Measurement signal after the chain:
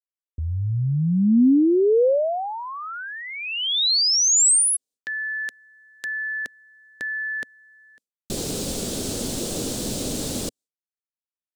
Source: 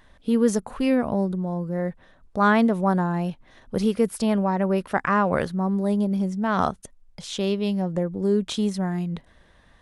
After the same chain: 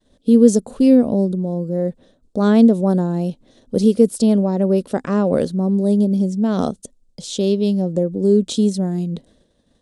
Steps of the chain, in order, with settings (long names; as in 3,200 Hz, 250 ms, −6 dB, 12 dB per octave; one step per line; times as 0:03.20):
downward expander −48 dBFS
octave-band graphic EQ 125/250/500/1,000/2,000/4,000/8,000 Hz +3/+11/+10/−6/−8/+7/+11 dB
level −3 dB